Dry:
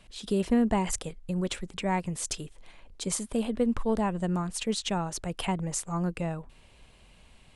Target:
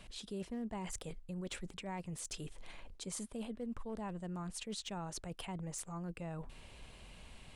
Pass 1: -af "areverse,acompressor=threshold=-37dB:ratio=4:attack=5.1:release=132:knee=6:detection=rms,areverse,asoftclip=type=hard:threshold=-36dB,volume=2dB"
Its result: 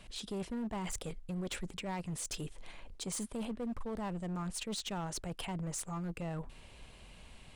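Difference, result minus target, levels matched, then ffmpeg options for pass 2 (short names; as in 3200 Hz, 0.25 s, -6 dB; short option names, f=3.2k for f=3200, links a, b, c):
compressor: peak gain reduction -5 dB
-af "areverse,acompressor=threshold=-44dB:ratio=4:attack=5.1:release=132:knee=6:detection=rms,areverse,asoftclip=type=hard:threshold=-36dB,volume=2dB"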